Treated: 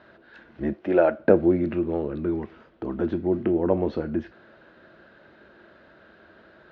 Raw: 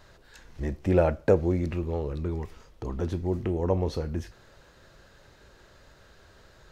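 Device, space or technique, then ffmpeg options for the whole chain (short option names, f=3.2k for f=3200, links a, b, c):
guitar cabinet: -filter_complex "[0:a]highpass=110,equalizer=f=110:t=q:w=4:g=-7,equalizer=f=220:t=q:w=4:g=9,equalizer=f=330:t=q:w=4:g=10,equalizer=f=640:t=q:w=4:g=7,equalizer=f=1.5k:t=q:w=4:g=8,lowpass=f=3.5k:w=0.5412,lowpass=f=3.5k:w=1.3066,asettb=1/sr,asplit=3[a][b][c];[a]atrim=end=0.734[d];[b]atrim=start=0.73:end=1.2,asetpts=PTS-STARTPTS,afade=t=in:d=0.004:c=qsin,afade=t=out:st=0.466:d=0.004:c=qsin,bass=f=250:g=-14,treble=f=4k:g=2[e];[c]atrim=start=1.196[f];[d][e]acrossfade=d=0.004:c1=hsin:c2=qsin[g];[g][f]acrossfade=d=0.004:c1=qsin:c2=hsin"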